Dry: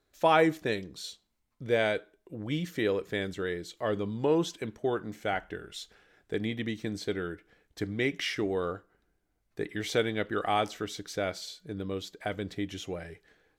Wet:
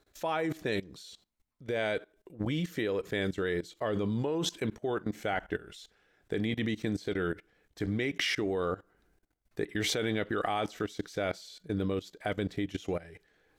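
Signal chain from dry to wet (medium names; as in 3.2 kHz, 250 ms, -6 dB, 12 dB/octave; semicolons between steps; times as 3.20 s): level held to a coarse grid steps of 19 dB; trim +7.5 dB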